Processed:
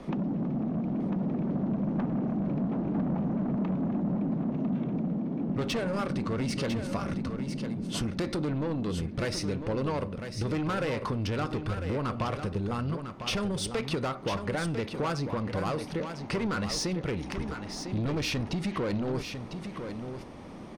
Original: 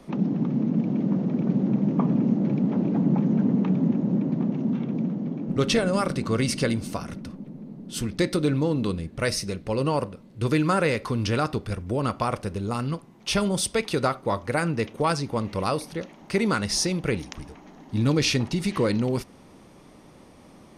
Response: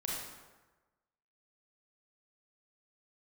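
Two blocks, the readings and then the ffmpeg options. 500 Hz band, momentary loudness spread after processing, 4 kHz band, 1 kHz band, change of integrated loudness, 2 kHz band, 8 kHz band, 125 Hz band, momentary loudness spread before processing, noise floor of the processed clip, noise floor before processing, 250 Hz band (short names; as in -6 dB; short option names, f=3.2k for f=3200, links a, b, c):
-6.0 dB, 5 LU, -6.0 dB, -6.0 dB, -6.0 dB, -6.0 dB, -8.5 dB, -5.0 dB, 9 LU, -42 dBFS, -50 dBFS, -5.5 dB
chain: -filter_complex "[0:a]aemphasis=mode=reproduction:type=50fm,asoftclip=type=tanh:threshold=-23.5dB,acompressor=threshold=-34dB:ratio=6,asplit=2[a][b];[b]aecho=0:1:1000:0.398[c];[a][c]amix=inputs=2:normalize=0,volume=5dB"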